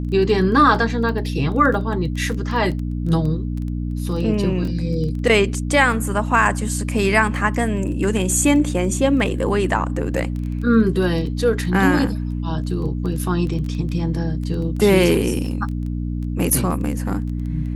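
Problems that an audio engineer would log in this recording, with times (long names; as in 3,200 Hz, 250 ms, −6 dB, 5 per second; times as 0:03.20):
surface crackle 11 per second −26 dBFS
mains hum 60 Hz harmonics 5 −24 dBFS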